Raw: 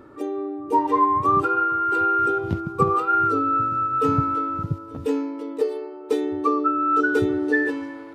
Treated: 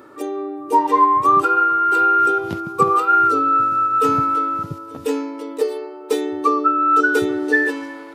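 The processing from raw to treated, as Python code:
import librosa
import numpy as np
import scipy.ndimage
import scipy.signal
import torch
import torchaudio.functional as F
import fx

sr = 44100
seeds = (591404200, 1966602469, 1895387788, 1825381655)

y = fx.highpass(x, sr, hz=420.0, slope=6)
y = fx.high_shelf(y, sr, hz=5300.0, db=8.5)
y = y * 10.0 ** (5.5 / 20.0)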